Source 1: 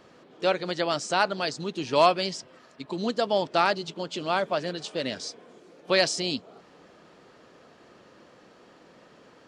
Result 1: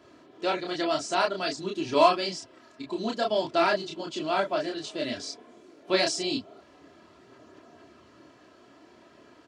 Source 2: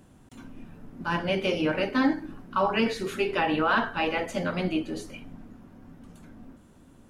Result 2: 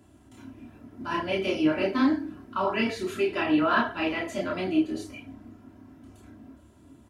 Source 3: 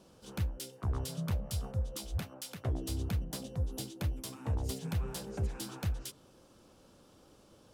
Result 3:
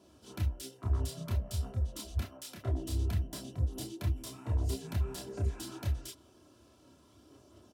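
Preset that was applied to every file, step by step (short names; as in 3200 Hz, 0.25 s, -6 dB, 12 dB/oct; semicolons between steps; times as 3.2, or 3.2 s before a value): HPF 73 Hz 24 dB/oct; low shelf 160 Hz +8.5 dB; comb 3 ms, depth 66%; chorus voices 6, 1.1 Hz, delay 29 ms, depth 3.8 ms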